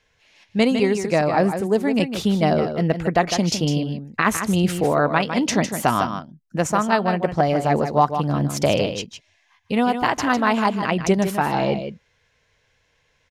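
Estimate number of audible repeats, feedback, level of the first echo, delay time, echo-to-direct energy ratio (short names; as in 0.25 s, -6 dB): 1, no steady repeat, -8.5 dB, 0.155 s, -8.5 dB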